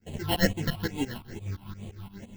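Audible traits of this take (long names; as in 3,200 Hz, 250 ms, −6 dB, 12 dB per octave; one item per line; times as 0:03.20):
aliases and images of a low sample rate 1,200 Hz, jitter 0%
phaser sweep stages 6, 2.3 Hz, lowest notch 460–1,500 Hz
tremolo saw up 5.8 Hz, depth 95%
a shimmering, thickened sound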